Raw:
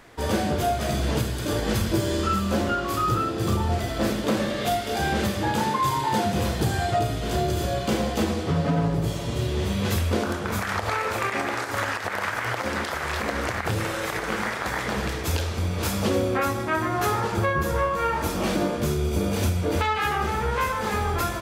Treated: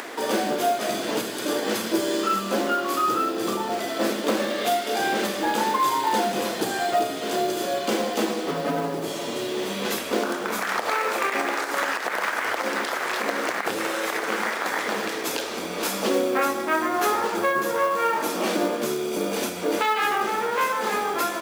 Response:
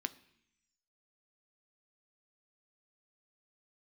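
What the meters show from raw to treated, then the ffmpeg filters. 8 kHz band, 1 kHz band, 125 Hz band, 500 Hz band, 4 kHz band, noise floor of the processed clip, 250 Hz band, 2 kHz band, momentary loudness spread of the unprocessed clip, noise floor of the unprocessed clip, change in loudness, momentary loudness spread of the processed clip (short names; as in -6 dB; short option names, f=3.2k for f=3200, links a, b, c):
+2.5 dB, +2.0 dB, -17.0 dB, +2.0 dB, +2.0 dB, -31 dBFS, -1.5 dB, +2.0 dB, 3 LU, -30 dBFS, +0.5 dB, 4 LU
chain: -af "highpass=f=250:w=0.5412,highpass=f=250:w=1.3066,acrusher=bits=5:mode=log:mix=0:aa=0.000001,acompressor=mode=upward:threshold=-27dB:ratio=2.5,volume=2dB"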